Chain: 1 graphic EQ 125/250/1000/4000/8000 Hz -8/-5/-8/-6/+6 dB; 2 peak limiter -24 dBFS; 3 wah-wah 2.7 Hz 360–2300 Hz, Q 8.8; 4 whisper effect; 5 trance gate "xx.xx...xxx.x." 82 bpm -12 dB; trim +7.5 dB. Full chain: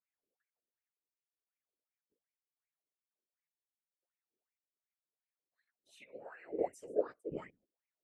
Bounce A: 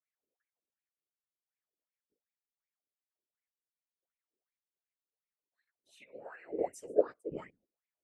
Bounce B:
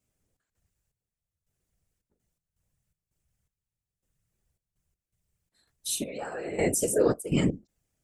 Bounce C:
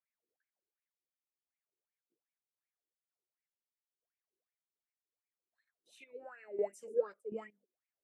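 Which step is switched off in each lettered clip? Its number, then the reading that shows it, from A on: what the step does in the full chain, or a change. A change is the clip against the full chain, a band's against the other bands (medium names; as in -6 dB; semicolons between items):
2, crest factor change +2.5 dB; 3, 8 kHz band +15.5 dB; 4, 250 Hz band -6.0 dB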